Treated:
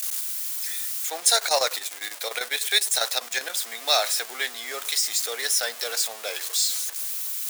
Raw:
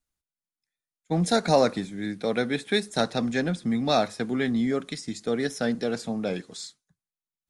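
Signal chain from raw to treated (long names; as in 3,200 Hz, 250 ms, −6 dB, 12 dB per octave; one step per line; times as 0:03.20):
converter with a step at zero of −34.5 dBFS
high-pass filter 490 Hz 24 dB per octave
spectral tilt +4.5 dB per octave
0:01.31–0:03.50: square-wave tremolo 10 Hz, depth 65%, duty 75%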